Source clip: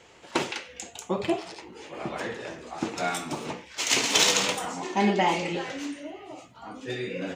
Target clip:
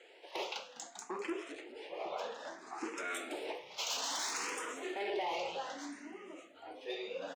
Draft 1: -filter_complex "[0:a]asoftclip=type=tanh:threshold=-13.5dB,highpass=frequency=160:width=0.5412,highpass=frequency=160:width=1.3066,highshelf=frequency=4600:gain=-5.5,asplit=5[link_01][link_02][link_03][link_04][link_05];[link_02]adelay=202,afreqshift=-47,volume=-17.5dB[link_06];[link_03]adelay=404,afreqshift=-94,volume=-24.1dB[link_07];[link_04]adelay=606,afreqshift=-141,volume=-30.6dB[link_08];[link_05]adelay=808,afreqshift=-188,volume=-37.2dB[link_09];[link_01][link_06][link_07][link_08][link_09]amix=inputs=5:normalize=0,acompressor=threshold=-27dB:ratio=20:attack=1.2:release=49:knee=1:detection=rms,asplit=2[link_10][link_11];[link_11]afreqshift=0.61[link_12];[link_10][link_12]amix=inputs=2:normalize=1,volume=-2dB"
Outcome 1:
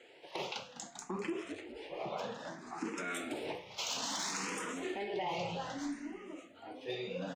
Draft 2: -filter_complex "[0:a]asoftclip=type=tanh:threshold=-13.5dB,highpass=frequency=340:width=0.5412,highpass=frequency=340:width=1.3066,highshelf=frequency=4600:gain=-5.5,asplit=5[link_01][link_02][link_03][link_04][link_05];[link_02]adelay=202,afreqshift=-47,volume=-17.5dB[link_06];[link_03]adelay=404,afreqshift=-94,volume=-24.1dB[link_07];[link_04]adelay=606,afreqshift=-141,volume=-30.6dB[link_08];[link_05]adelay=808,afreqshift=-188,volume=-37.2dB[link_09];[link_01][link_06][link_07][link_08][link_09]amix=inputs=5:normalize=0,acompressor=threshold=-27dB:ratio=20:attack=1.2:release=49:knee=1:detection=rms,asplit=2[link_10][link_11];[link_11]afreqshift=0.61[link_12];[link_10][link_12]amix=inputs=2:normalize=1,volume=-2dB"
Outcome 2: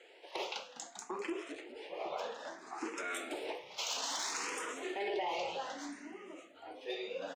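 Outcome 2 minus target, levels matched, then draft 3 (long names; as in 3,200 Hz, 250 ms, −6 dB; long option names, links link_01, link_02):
soft clipping: distortion −10 dB
-filter_complex "[0:a]asoftclip=type=tanh:threshold=-23dB,highpass=frequency=340:width=0.5412,highpass=frequency=340:width=1.3066,highshelf=frequency=4600:gain=-5.5,asplit=5[link_01][link_02][link_03][link_04][link_05];[link_02]adelay=202,afreqshift=-47,volume=-17.5dB[link_06];[link_03]adelay=404,afreqshift=-94,volume=-24.1dB[link_07];[link_04]adelay=606,afreqshift=-141,volume=-30.6dB[link_08];[link_05]adelay=808,afreqshift=-188,volume=-37.2dB[link_09];[link_01][link_06][link_07][link_08][link_09]amix=inputs=5:normalize=0,acompressor=threshold=-27dB:ratio=20:attack=1.2:release=49:knee=1:detection=rms,asplit=2[link_10][link_11];[link_11]afreqshift=0.61[link_12];[link_10][link_12]amix=inputs=2:normalize=1,volume=-2dB"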